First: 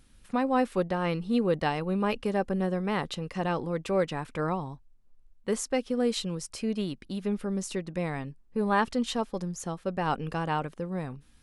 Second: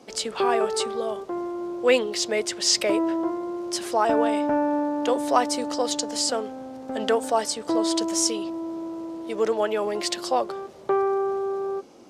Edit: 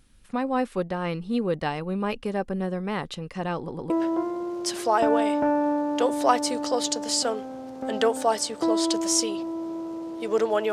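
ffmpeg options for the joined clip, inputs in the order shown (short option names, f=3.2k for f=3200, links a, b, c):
-filter_complex "[0:a]apad=whole_dur=10.72,atrim=end=10.72,asplit=3[a][b][c];[a]atrim=end=3.682[d];[b]atrim=start=3.568:end=3.682[e];[c]atrim=start=3.568:end=3.682[f];[1:a]atrim=start=2.968:end=9.79[g];[d][e]acrossfade=d=0.004:c1=hsin:c2=hsin[h];[h][f]acrossfade=d=0.004:c1=hsin:c2=hsin[i];[i][g]acrossfade=d=0.004:c1=hsin:c2=hsin"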